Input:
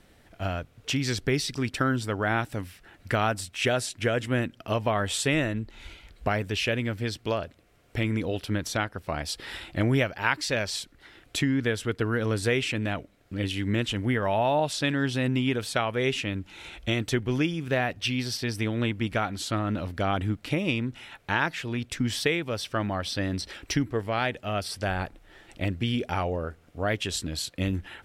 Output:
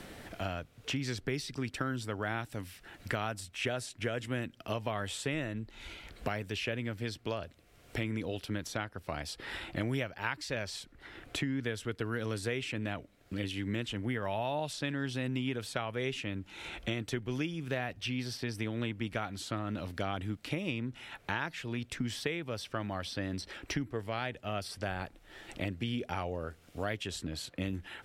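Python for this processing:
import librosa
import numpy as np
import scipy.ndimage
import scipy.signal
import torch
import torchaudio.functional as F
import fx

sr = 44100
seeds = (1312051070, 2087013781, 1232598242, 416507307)

y = fx.band_squash(x, sr, depth_pct=70)
y = F.gain(torch.from_numpy(y), -9.0).numpy()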